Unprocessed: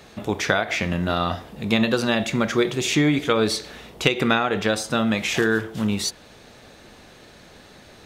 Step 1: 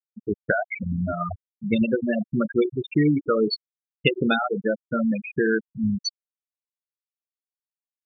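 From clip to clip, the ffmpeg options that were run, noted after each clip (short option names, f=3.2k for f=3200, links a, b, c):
-filter_complex "[0:a]afftfilt=real='re*gte(hypot(re,im),0.316)':imag='im*gte(hypot(re,im),0.316)':win_size=1024:overlap=0.75,acrossover=split=3800[a][b];[b]acontrast=31[c];[a][c]amix=inputs=2:normalize=0"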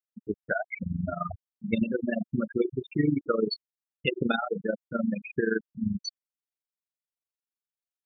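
-af "tremolo=f=23:d=0.788,volume=-2dB"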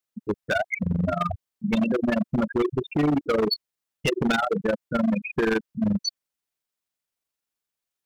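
-af "asoftclip=type=hard:threshold=-26.5dB,volume=8dB"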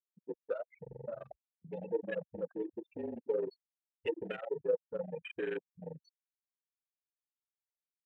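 -filter_complex "[0:a]asplit=3[a][b][c];[a]bandpass=f=530:t=q:w=8,volume=0dB[d];[b]bandpass=f=1.84k:t=q:w=8,volume=-6dB[e];[c]bandpass=f=2.48k:t=q:w=8,volume=-9dB[f];[d][e][f]amix=inputs=3:normalize=0,afreqshift=-41,afwtdn=0.00891,volume=-2.5dB"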